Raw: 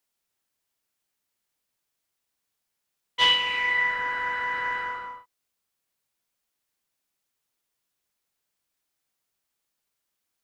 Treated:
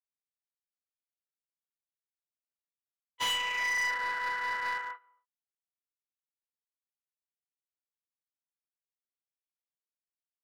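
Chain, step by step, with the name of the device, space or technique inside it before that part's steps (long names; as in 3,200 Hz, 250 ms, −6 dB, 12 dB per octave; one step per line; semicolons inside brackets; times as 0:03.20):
walkie-talkie (band-pass filter 570–2,600 Hz; hard clipping −26.5 dBFS, distortion −8 dB; noise gate −31 dBFS, range −27 dB)
level −1 dB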